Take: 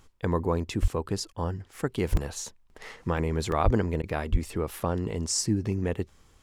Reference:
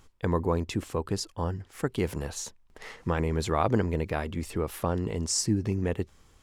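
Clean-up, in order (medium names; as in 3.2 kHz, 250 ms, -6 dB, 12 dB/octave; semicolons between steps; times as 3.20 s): de-plosive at 0.81/2.11/3.64/4.31 s; interpolate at 0.88/2.17/3.17/3.52/4.80 s, 2.1 ms; interpolate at 1.33/4.02 s, 13 ms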